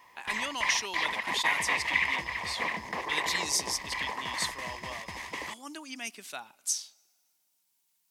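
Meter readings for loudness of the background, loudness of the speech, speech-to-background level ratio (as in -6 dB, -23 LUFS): -31.5 LUFS, -34.5 LUFS, -3.0 dB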